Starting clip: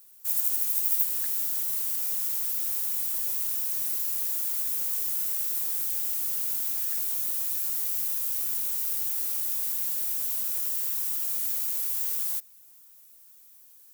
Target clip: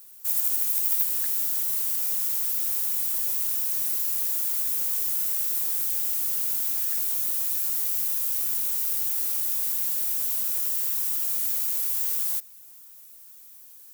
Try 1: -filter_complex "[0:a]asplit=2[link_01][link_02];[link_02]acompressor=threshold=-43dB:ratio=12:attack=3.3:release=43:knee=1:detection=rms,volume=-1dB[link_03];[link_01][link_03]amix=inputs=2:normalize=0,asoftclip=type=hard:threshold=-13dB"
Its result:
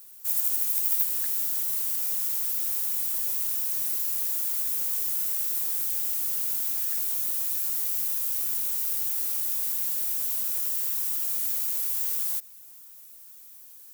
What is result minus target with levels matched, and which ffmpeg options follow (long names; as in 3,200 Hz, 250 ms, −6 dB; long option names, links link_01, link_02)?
downward compressor: peak gain reduction +9 dB
-filter_complex "[0:a]asplit=2[link_01][link_02];[link_02]acompressor=threshold=-33dB:ratio=12:attack=3.3:release=43:knee=1:detection=rms,volume=-1dB[link_03];[link_01][link_03]amix=inputs=2:normalize=0,asoftclip=type=hard:threshold=-13dB"